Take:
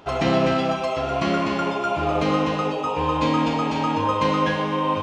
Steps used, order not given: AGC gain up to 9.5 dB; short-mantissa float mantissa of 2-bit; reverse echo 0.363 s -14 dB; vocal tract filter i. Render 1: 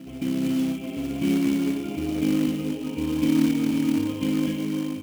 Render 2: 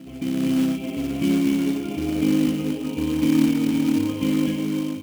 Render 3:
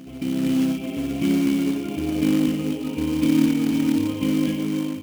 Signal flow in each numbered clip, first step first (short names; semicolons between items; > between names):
reverse echo > AGC > vocal tract filter > short-mantissa float; reverse echo > vocal tract filter > AGC > short-mantissa float; vocal tract filter > reverse echo > short-mantissa float > AGC